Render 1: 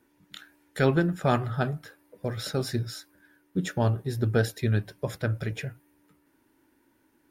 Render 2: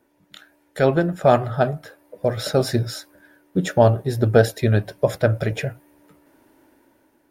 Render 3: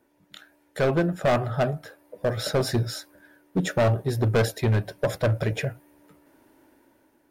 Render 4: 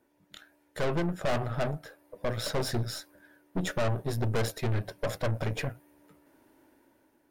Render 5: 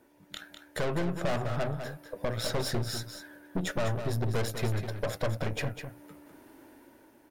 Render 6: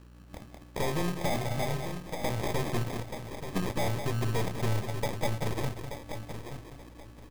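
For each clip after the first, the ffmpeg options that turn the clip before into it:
-af "equalizer=f=620:t=o:w=0.8:g=10.5,dynaudnorm=f=280:g=7:m=3.16"
-af "asoftclip=type=hard:threshold=0.178,volume=0.794"
-af "aeval=exprs='(tanh(20*val(0)+0.7)-tanh(0.7))/20':c=same"
-filter_complex "[0:a]acompressor=threshold=0.00794:ratio=2,asplit=2[s0][s1];[s1]aecho=0:1:201:0.376[s2];[s0][s2]amix=inputs=2:normalize=0,volume=2.37"
-af "aeval=exprs='val(0)+0.00282*(sin(2*PI*60*n/s)+sin(2*PI*2*60*n/s)/2+sin(2*PI*3*60*n/s)/3+sin(2*PI*4*60*n/s)/4+sin(2*PI*5*60*n/s)/5)':c=same,aecho=1:1:880|1760|2640:0.355|0.0816|0.0188,acrusher=samples=31:mix=1:aa=0.000001"

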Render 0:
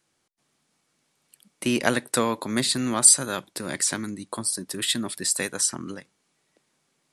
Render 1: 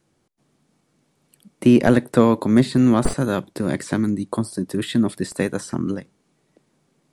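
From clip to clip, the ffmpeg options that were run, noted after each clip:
-filter_complex "[0:a]aeval=exprs='clip(val(0),-1,0.251)':c=same,tiltshelf=f=730:g=7.5,acrossover=split=3000[s0][s1];[s1]acompressor=threshold=0.00891:ratio=4:attack=1:release=60[s2];[s0][s2]amix=inputs=2:normalize=0,volume=2"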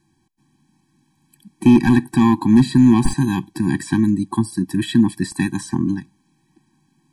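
-filter_complex "[0:a]asplit=2[s0][s1];[s1]aeval=exprs='0.316*(abs(mod(val(0)/0.316+3,4)-2)-1)':c=same,volume=0.708[s2];[s0][s2]amix=inputs=2:normalize=0,afftfilt=real='re*eq(mod(floor(b*sr/1024/380),2),0)':imag='im*eq(mod(floor(b*sr/1024/380),2),0)':win_size=1024:overlap=0.75"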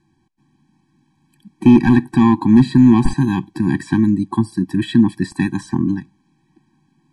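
-af "aemphasis=mode=reproduction:type=50fm,volume=1.19"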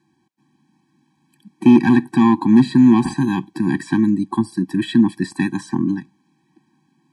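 -af "highpass=170"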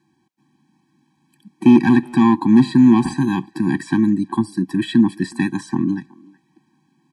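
-filter_complex "[0:a]asplit=2[s0][s1];[s1]adelay=370,highpass=300,lowpass=3400,asoftclip=type=hard:threshold=0.299,volume=0.0794[s2];[s0][s2]amix=inputs=2:normalize=0"

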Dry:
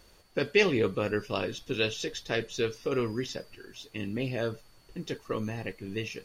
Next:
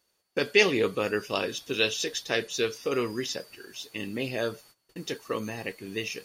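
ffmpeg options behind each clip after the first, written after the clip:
-af "highpass=f=280:p=1,agate=range=0.112:threshold=0.00141:ratio=16:detection=peak,highshelf=f=5500:g=8,volume=1.41"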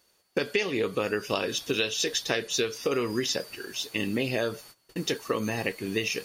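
-af "acompressor=threshold=0.0316:ratio=16,volume=2.24"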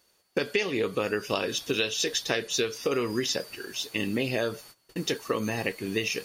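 -af anull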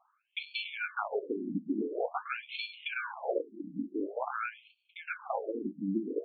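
-af "acrusher=samples=23:mix=1:aa=0.000001,afftfilt=real='re*between(b*sr/1024,230*pow(3200/230,0.5+0.5*sin(2*PI*0.47*pts/sr))/1.41,230*pow(3200/230,0.5+0.5*sin(2*PI*0.47*pts/sr))*1.41)':imag='im*between(b*sr/1024,230*pow(3200/230,0.5+0.5*sin(2*PI*0.47*pts/sr))/1.41,230*pow(3200/230,0.5+0.5*sin(2*PI*0.47*pts/sr))*1.41)':win_size=1024:overlap=0.75,volume=1.26"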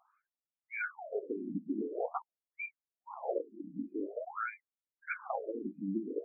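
-af "aeval=exprs='val(0)+0.00316*sin(2*PI*2600*n/s)':c=same,crystalizer=i=5:c=0,afftfilt=real='re*lt(b*sr/1024,660*pow(2500/660,0.5+0.5*sin(2*PI*1.6*pts/sr)))':imag='im*lt(b*sr/1024,660*pow(2500/660,0.5+0.5*sin(2*PI*1.6*pts/sr)))':win_size=1024:overlap=0.75,volume=0.668"

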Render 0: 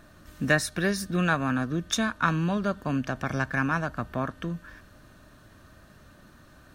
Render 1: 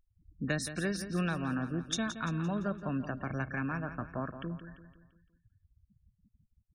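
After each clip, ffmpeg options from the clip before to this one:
-filter_complex "[0:a]afftfilt=real='re*gte(hypot(re,im),0.0178)':imag='im*gte(hypot(re,im),0.0178)':win_size=1024:overlap=0.75,acrossover=split=480|3000[s0][s1][s2];[s1]acompressor=threshold=0.0355:ratio=6[s3];[s0][s3][s2]amix=inputs=3:normalize=0,asplit=2[s4][s5];[s5]aecho=0:1:171|342|513|684|855:0.282|0.13|0.0596|0.0274|0.0126[s6];[s4][s6]amix=inputs=2:normalize=0,volume=0.473"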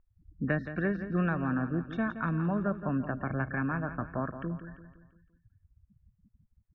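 -af "lowpass=f=2000:w=0.5412,lowpass=f=2000:w=1.3066,volume=1.5"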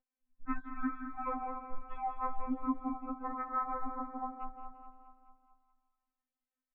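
-filter_complex "[0:a]asplit=2[s0][s1];[s1]aecho=0:1:213|426|639|852|1065|1278:0.299|0.167|0.0936|0.0524|0.0294|0.0164[s2];[s0][s2]amix=inputs=2:normalize=0,highpass=f=220:t=q:w=0.5412,highpass=f=220:t=q:w=1.307,lowpass=f=2900:t=q:w=0.5176,lowpass=f=2900:t=q:w=0.7071,lowpass=f=2900:t=q:w=1.932,afreqshift=-320,afftfilt=real='re*3.46*eq(mod(b,12),0)':imag='im*3.46*eq(mod(b,12),0)':win_size=2048:overlap=0.75,volume=1.12"

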